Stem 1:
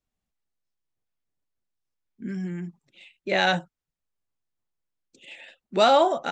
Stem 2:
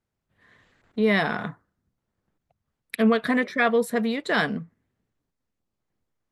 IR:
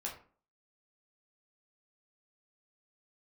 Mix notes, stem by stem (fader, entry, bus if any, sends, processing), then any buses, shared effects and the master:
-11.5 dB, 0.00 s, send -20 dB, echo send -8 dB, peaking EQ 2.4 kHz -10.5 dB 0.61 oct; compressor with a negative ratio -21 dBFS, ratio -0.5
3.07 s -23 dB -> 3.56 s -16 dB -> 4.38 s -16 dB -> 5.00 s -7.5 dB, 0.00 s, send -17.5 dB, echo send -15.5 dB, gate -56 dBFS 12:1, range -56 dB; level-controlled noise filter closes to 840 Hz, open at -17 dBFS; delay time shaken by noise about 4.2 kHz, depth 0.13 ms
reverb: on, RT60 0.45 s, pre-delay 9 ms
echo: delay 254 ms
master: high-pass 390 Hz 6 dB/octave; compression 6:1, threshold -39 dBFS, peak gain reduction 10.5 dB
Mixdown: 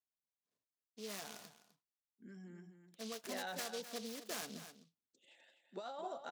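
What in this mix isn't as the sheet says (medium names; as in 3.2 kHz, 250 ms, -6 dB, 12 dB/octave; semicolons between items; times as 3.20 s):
stem 1 -11.5 dB -> -18.5 dB; stem 2: send off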